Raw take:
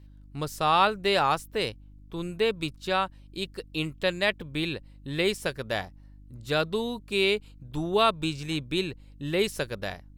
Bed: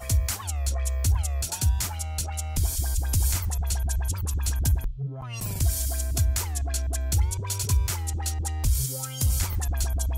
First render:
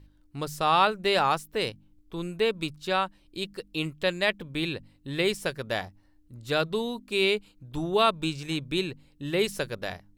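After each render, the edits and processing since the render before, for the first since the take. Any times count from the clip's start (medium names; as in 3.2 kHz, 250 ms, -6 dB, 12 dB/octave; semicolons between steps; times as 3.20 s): de-hum 50 Hz, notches 5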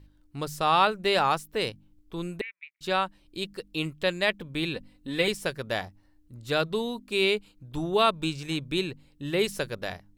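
2.41–2.81 s: Butterworth band-pass 2.1 kHz, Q 4.3; 4.74–5.28 s: comb 4 ms, depth 68%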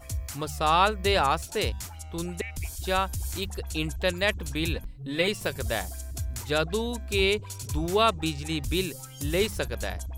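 add bed -9.5 dB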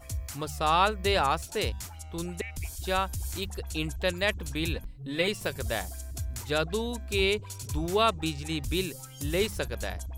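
trim -2 dB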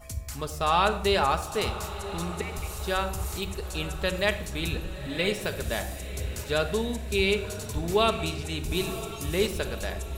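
echo that smears into a reverb 970 ms, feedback 49%, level -13 dB; simulated room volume 2400 m³, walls furnished, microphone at 1.4 m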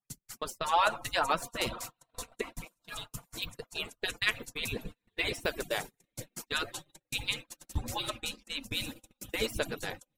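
harmonic-percussive separation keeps percussive; gate -39 dBFS, range -37 dB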